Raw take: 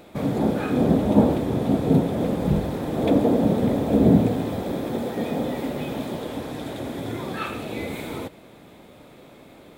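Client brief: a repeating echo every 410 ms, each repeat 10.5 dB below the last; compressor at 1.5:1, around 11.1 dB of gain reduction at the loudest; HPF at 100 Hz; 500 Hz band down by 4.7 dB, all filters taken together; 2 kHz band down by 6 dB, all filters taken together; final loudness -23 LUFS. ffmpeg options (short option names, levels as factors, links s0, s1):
-af "highpass=100,equalizer=f=500:t=o:g=-5.5,equalizer=f=2000:t=o:g=-7.5,acompressor=threshold=0.00631:ratio=1.5,aecho=1:1:410|820|1230:0.299|0.0896|0.0269,volume=3.35"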